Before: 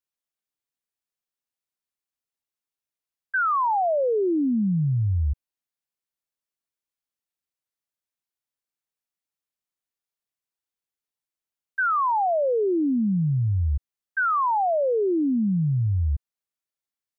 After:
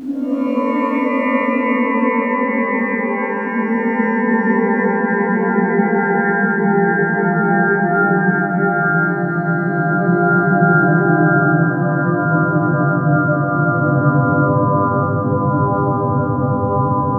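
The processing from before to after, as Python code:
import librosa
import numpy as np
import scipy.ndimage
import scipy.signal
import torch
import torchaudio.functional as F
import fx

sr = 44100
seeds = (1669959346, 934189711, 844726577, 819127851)

p1 = fx.hum_notches(x, sr, base_hz=60, count=5)
p2 = fx.over_compress(p1, sr, threshold_db=-36.0, ratio=-1.0)
p3 = p1 + F.gain(torch.from_numpy(p2), -3.0).numpy()
p4 = fx.quant_dither(p3, sr, seeds[0], bits=12, dither='none')
p5 = fx.paulstretch(p4, sr, seeds[1], factor=33.0, window_s=0.05, from_s=15.29)
p6 = p5 + fx.echo_wet_highpass(p5, sr, ms=858, feedback_pct=77, hz=1400.0, wet_db=-8, dry=0)
p7 = fx.rev_shimmer(p6, sr, seeds[2], rt60_s=3.0, semitones=12, shimmer_db=-2, drr_db=-8.5)
y = F.gain(torch.from_numpy(p7), -7.0).numpy()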